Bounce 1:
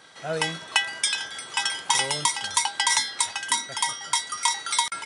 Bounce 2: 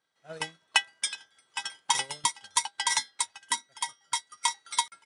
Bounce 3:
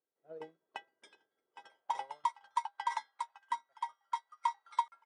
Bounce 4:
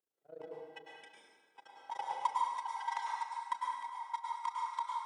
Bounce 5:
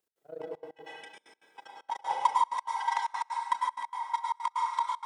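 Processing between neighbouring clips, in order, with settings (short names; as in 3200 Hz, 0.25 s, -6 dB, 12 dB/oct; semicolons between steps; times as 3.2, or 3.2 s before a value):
upward expander 2.5:1, over -37 dBFS
band-pass sweep 400 Hz -> 1000 Hz, 1.47–2.22; dynamic EQ 580 Hz, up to +4 dB, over -50 dBFS, Q 1; gain -3 dB
AM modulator 27 Hz, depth 90%; plate-style reverb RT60 1.4 s, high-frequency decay 0.8×, pre-delay 90 ms, DRR -3 dB; gain +1 dB
step gate "x.xxxxx." 191 bpm -24 dB; gain +8 dB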